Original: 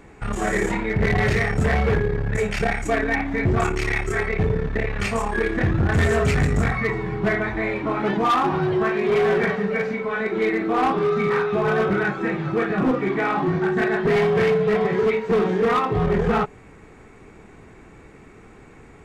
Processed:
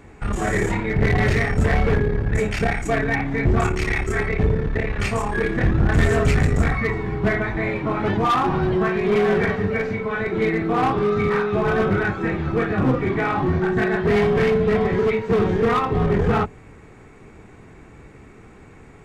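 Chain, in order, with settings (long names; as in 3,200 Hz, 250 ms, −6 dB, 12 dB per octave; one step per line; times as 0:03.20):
sub-octave generator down 1 octave, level −1 dB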